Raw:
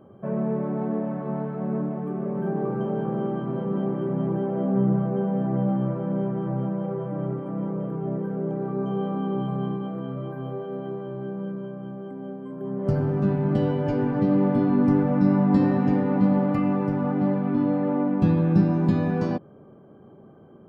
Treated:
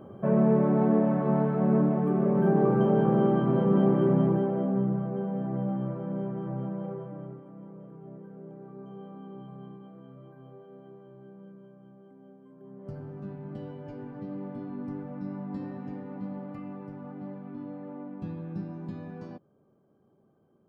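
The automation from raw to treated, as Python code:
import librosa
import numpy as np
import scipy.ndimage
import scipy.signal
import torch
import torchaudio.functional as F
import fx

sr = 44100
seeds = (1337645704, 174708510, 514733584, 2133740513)

y = fx.gain(x, sr, db=fx.line((4.1, 4.0), (4.9, -6.5), (6.88, -6.5), (7.53, -17.0)))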